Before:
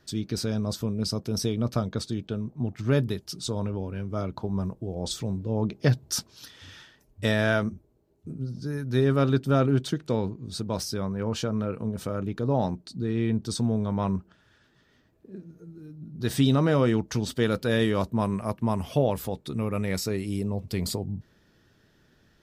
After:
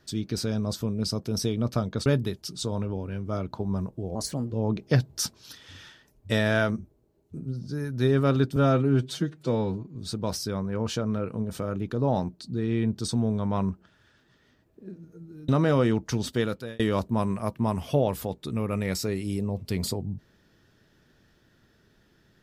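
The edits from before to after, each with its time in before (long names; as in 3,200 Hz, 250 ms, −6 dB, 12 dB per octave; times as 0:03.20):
0:02.06–0:02.90: remove
0:04.99–0:05.44: play speed 125%
0:09.49–0:10.42: time-stretch 1.5×
0:15.95–0:16.51: remove
0:17.35–0:17.82: fade out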